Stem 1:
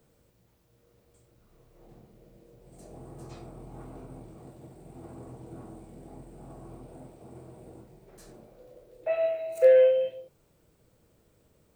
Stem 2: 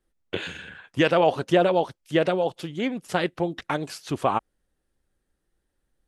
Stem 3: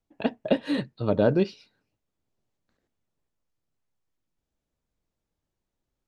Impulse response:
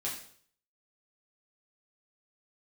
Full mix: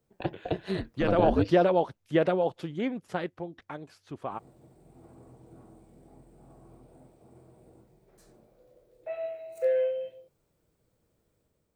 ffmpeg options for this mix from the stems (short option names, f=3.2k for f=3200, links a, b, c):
-filter_complex "[0:a]volume=-12dB,asplit=3[a][b][c];[a]atrim=end=1.78,asetpts=PTS-STARTPTS,afade=t=out:st=1.776:d=0.004:c=hsin[d];[b]atrim=start=1.78:end=4.31,asetpts=PTS-STARTPTS,volume=0[e];[c]atrim=start=4.31,asetpts=PTS-STARTPTS,afade=t=in:d=0.004:c=hsin[f];[d][e][f]concat=n=3:v=0:a=1[g];[1:a]highshelf=f=3.3k:g=-12,volume=-6dB,afade=t=in:st=0.8:d=0.56:silence=0.316228,afade=t=out:st=2.72:d=0.75:silence=0.298538[h];[2:a]acrossover=split=220[i][j];[j]acompressor=threshold=-26dB:ratio=6[k];[i][k]amix=inputs=2:normalize=0,aeval=exprs='val(0)*sin(2*PI*96*n/s)':c=same,volume=-1dB[l];[g][h][l]amix=inputs=3:normalize=0,equalizer=f=2.8k:w=7.2:g=-2.5,dynaudnorm=f=630:g=3:m=4dB"